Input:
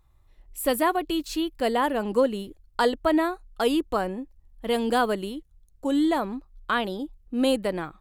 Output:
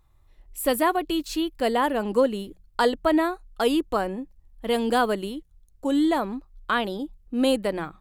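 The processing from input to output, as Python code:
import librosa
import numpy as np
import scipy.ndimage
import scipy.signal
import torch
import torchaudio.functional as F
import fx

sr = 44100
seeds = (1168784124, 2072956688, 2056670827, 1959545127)

y = fx.hum_notches(x, sr, base_hz=60, count=3)
y = y * 10.0 ** (1.0 / 20.0)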